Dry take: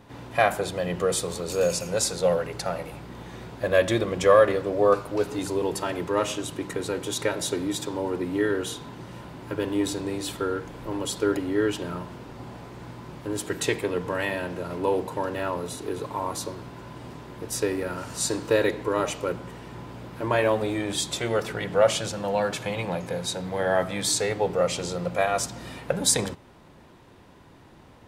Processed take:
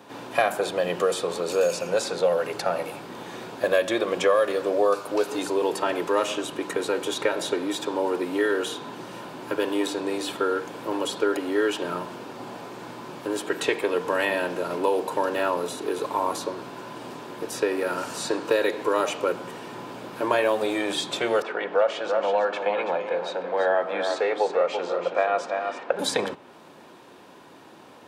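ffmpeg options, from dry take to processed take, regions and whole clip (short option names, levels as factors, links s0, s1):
-filter_complex "[0:a]asettb=1/sr,asplit=3[s0][s1][s2];[s0]atrim=end=21.424[s3];[s1]atrim=start=21.42:end=25.99,asetpts=PTS-STARTPTS,afade=t=in:d=0.004:c=qsin,afade=t=out:st=4.566:d=0.004:c=qsin,highpass=360,lowpass=2100,aecho=1:1:331:0.355,atrim=end_sample=201537[s4];[s2]atrim=start=25.986[s5];[s3][s4]acrossfade=d=0.004:c1=hsin:c2=qsin[s6];[s6][s5]acrossfade=d=0.004:c1=qsin:c2=hsin,highpass=280,bandreject=f=2000:w=12,acrossover=split=370|3500[s7][s8][s9];[s7]acompressor=threshold=0.0112:ratio=4[s10];[s8]acompressor=threshold=0.0501:ratio=4[s11];[s9]acompressor=threshold=0.00562:ratio=4[s12];[s10][s11][s12]amix=inputs=3:normalize=0,volume=2"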